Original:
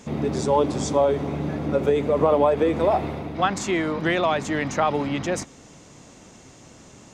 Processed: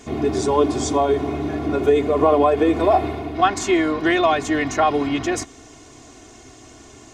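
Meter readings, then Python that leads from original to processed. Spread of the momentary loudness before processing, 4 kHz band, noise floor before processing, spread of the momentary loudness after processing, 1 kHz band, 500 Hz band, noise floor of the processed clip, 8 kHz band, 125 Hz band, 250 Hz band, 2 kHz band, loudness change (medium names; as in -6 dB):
8 LU, +4.0 dB, -48 dBFS, 8 LU, +4.5 dB, +2.5 dB, -45 dBFS, +4.0 dB, -1.0 dB, +4.5 dB, +3.5 dB, +3.5 dB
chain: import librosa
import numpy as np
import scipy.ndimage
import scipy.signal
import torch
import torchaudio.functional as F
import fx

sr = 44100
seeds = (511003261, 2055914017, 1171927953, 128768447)

y = x + 0.86 * np.pad(x, (int(2.8 * sr / 1000.0), 0))[:len(x)]
y = y * 10.0 ** (1.5 / 20.0)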